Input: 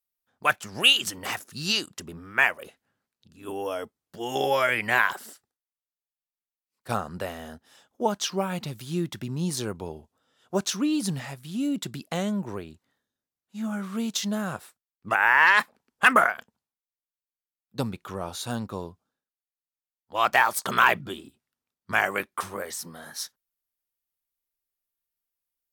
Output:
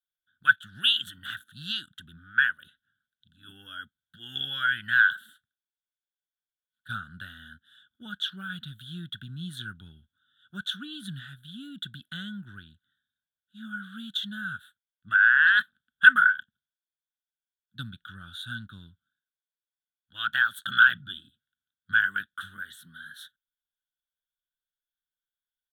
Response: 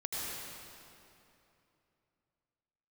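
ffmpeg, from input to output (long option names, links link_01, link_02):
-af "firequalizer=gain_entry='entry(130,0);entry(260,-8);entry(450,-30);entry(640,-28);entry(1000,-25);entry(1500,15);entry(2200,-20);entry(3400,14);entry(4900,-23);entry(9400,-8)':delay=0.05:min_phase=1,volume=-6dB"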